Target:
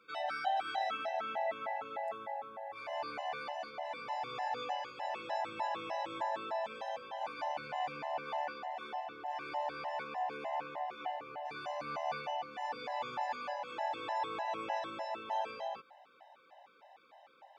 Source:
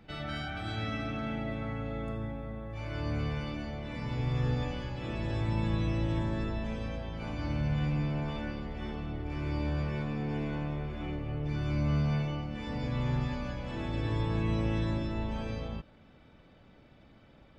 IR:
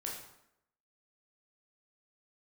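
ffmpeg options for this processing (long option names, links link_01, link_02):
-af "highpass=frequency=770:width_type=q:width=4.8,afftfilt=real='re*gt(sin(2*PI*3.3*pts/sr)*(1-2*mod(floor(b*sr/1024/530),2)),0)':imag='im*gt(sin(2*PI*3.3*pts/sr)*(1-2*mod(floor(b*sr/1024/530),2)),0)':win_size=1024:overlap=0.75,volume=1dB"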